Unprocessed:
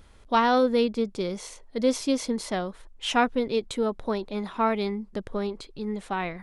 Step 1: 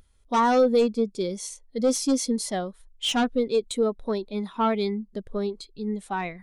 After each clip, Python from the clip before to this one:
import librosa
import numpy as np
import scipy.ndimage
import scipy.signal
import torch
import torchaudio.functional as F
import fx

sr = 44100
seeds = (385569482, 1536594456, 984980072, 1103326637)

y = F.preemphasis(torch.from_numpy(x), 0.8).numpy()
y = fx.fold_sine(y, sr, drive_db=9, ceiling_db=-20.5)
y = fx.spectral_expand(y, sr, expansion=1.5)
y = y * librosa.db_to_amplitude(6.0)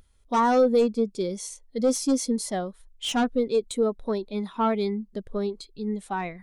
y = fx.dynamic_eq(x, sr, hz=3300.0, q=0.79, threshold_db=-40.0, ratio=4.0, max_db=-4)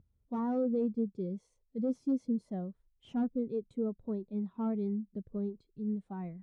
y = fx.bandpass_q(x, sr, hz=130.0, q=1.3)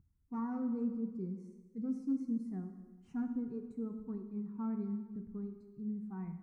y = fx.fixed_phaser(x, sr, hz=1400.0, stages=4)
y = fx.rev_plate(y, sr, seeds[0], rt60_s=1.3, hf_ratio=1.0, predelay_ms=0, drr_db=5.5)
y = y * librosa.db_to_amplitude(-2.5)